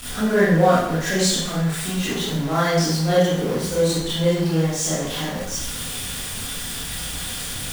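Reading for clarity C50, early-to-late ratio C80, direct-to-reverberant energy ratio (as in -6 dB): -1.5 dB, 3.5 dB, -10.0 dB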